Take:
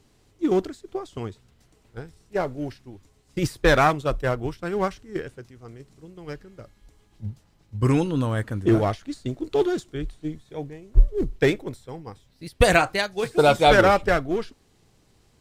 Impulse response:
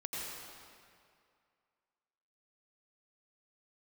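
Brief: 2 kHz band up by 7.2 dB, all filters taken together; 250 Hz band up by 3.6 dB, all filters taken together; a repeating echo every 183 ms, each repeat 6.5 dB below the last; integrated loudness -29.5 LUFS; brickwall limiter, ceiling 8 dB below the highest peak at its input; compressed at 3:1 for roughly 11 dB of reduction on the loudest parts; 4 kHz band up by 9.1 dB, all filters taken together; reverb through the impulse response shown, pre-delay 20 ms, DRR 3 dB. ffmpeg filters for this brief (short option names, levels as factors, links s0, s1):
-filter_complex "[0:a]equalizer=f=250:t=o:g=5,equalizer=f=2000:t=o:g=7.5,equalizer=f=4000:t=o:g=8.5,acompressor=threshold=0.0708:ratio=3,alimiter=limit=0.158:level=0:latency=1,aecho=1:1:183|366|549|732|915|1098:0.473|0.222|0.105|0.0491|0.0231|0.0109,asplit=2[s0][s1];[1:a]atrim=start_sample=2205,adelay=20[s2];[s1][s2]afir=irnorm=-1:irlink=0,volume=0.562[s3];[s0][s3]amix=inputs=2:normalize=0,volume=0.75"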